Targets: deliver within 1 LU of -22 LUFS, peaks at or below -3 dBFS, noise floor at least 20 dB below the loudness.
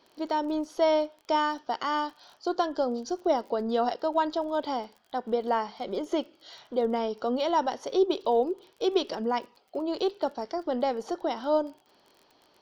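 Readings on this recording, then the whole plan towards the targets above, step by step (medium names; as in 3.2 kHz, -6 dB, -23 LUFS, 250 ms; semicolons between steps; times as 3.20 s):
tick rate 31 per s; loudness -29.0 LUFS; peak level -13.0 dBFS; loudness target -22.0 LUFS
-> de-click; trim +7 dB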